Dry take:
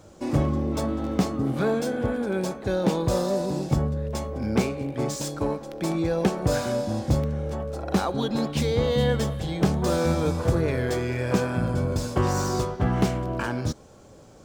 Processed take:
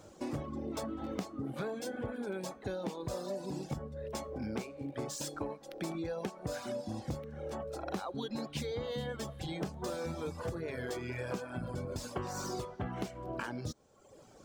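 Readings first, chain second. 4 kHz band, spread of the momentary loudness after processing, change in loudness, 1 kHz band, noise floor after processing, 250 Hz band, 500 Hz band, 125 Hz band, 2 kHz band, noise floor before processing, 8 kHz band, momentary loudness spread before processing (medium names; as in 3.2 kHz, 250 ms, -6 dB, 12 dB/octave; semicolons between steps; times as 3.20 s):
-11.0 dB, 3 LU, -14.0 dB, -12.0 dB, -57 dBFS, -14.0 dB, -13.0 dB, -16.5 dB, -11.0 dB, -49 dBFS, -10.0 dB, 5 LU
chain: reverb removal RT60 0.96 s; bass shelf 170 Hz -6 dB; compression, threshold -32 dBFS, peak gain reduction 13.5 dB; trim -3 dB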